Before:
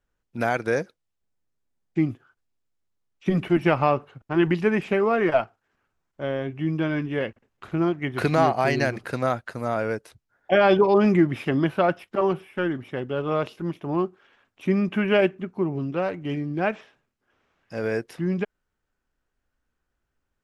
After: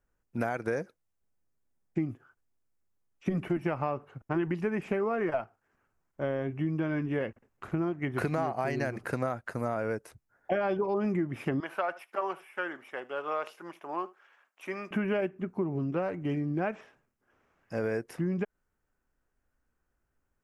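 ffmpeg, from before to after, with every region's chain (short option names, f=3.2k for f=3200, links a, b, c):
-filter_complex "[0:a]asettb=1/sr,asplit=3[a][b][c];[a]atrim=end=11.604[d];[b]atrim=start=11.6:end=14.91,asetpts=PTS-STARTPTS,afade=t=in:d=0.004:c=qsin,afade=t=out:st=3.306:d=0.004:c=qsin,highpass=770,aecho=1:1:75:0.0794,atrim=end_sample=145971[e];[c]atrim=start=14.906[f];[d][e]acrossfade=d=0.004:c1=hsin:c2=qsin[g];[g][f]acrossfade=d=0.004:c1=qsin:c2=hsin,equalizer=f=3.7k:t=o:w=0.98:g=-10,acompressor=threshold=-27dB:ratio=6"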